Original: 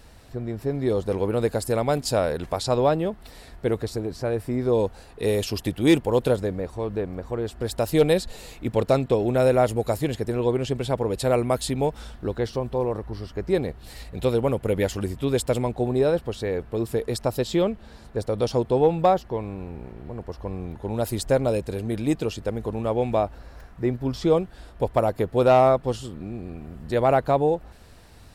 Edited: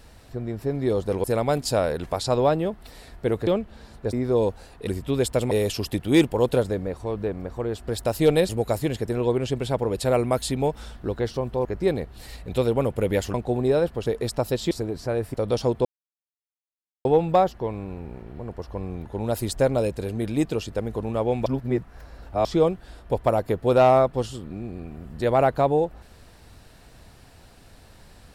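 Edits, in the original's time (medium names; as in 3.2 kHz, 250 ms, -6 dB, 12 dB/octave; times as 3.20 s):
1.24–1.64 s: delete
3.87–4.50 s: swap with 17.58–18.24 s
8.22–9.68 s: delete
12.84–13.32 s: delete
15.01–15.65 s: move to 5.24 s
16.37–16.93 s: delete
18.75 s: insert silence 1.20 s
23.16–24.15 s: reverse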